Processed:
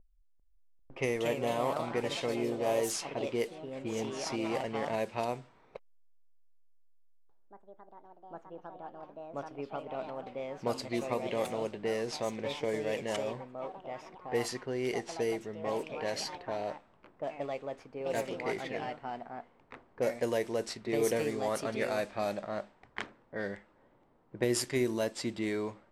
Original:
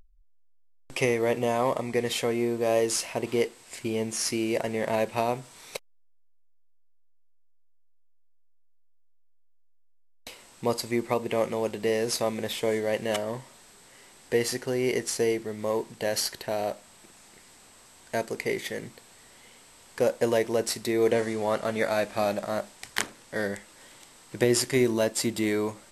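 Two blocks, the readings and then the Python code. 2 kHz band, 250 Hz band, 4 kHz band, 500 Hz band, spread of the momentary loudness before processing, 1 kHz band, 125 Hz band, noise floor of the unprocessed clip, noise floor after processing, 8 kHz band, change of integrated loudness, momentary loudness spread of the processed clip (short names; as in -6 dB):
-6.5 dB, -6.5 dB, -7.5 dB, -6.0 dB, 11 LU, -4.0 dB, -6.0 dB, -57 dBFS, -65 dBFS, -9.5 dB, -7.0 dB, 15 LU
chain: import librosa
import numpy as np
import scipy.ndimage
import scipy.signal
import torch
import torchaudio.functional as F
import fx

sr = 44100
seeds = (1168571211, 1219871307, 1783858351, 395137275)

y = fx.echo_pitch(x, sr, ms=396, semitones=3, count=3, db_per_echo=-6.0)
y = fx.env_lowpass(y, sr, base_hz=670.0, full_db=-20.0)
y = y * 10.0 ** (-7.0 / 20.0)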